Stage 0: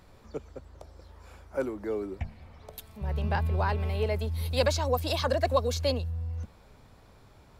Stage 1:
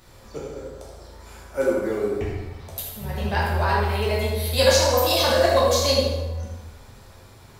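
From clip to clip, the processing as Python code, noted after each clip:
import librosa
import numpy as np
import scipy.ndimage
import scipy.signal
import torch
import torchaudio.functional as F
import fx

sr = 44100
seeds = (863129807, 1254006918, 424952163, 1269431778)

y = fx.high_shelf(x, sr, hz=3300.0, db=10.5)
y = fx.echo_feedback(y, sr, ms=78, feedback_pct=49, wet_db=-8.5)
y = fx.rev_plate(y, sr, seeds[0], rt60_s=1.1, hf_ratio=0.6, predelay_ms=0, drr_db=-5.5)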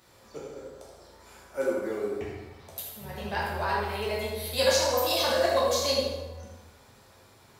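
y = fx.highpass(x, sr, hz=210.0, slope=6)
y = y * librosa.db_to_amplitude(-5.5)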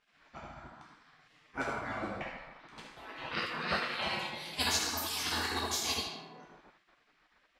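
y = fx.spec_gate(x, sr, threshold_db=-15, keep='weak')
y = fx.env_lowpass(y, sr, base_hz=1800.0, full_db=-29.0)
y = fx.rider(y, sr, range_db=4, speed_s=0.5)
y = y * librosa.db_to_amplitude(1.5)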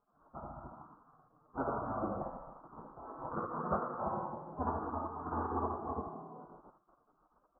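y = scipy.signal.sosfilt(scipy.signal.butter(12, 1300.0, 'lowpass', fs=sr, output='sos'), x)
y = y * librosa.db_to_amplitude(2.0)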